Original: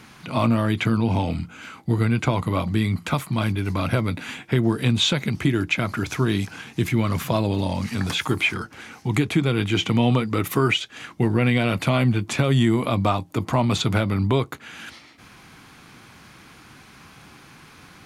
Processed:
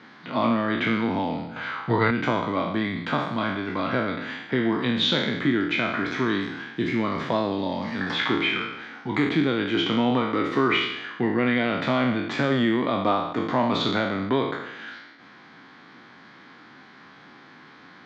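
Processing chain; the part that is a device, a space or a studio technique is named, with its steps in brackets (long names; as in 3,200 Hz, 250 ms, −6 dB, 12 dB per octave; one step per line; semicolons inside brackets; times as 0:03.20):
peak hold with a decay on every bin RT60 0.87 s
kitchen radio (loudspeaker in its box 220–4,200 Hz, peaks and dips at 260 Hz +4 dB, 1,800 Hz +5 dB, 2,600 Hz −9 dB)
0:01.56–0:02.11: octave-band graphic EQ 125/250/500/1,000/2,000/4,000 Hz +9/−6/+7/+9/+5/+7 dB
level −2.5 dB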